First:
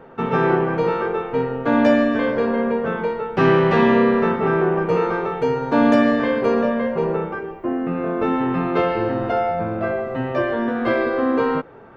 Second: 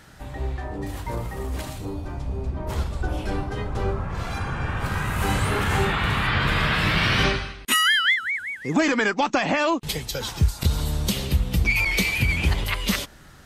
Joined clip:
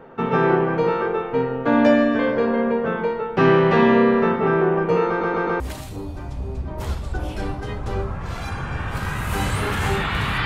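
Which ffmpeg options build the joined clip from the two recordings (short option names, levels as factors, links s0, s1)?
-filter_complex "[0:a]apad=whole_dur=10.45,atrim=end=10.45,asplit=4[s0][s1][s2][s3];[s0]atrim=end=5.212[s4];[s1]atrim=start=5.078:end=5.212[s5];[s2]atrim=start=5.078:end=5.212[s6];[s3]atrim=start=5.078:end=5.212[s7];[1:a]atrim=start=1.488:end=6.34[s8];[s4][s5]acrossfade=d=0.004:c1=hsin:c2=hsin[s9];[s9][s6]acrossfade=d=0.004:c1=hsin:c2=hsin[s10];[s10][s7]acrossfade=d=0.004:c1=hsin:c2=hsin[s11];[s11][s8]acrossfade=d=0.004:c1=hsin:c2=hsin"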